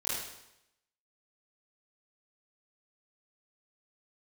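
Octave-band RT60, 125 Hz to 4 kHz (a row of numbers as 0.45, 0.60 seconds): 0.85, 0.80, 0.85, 0.85, 0.80, 0.80 seconds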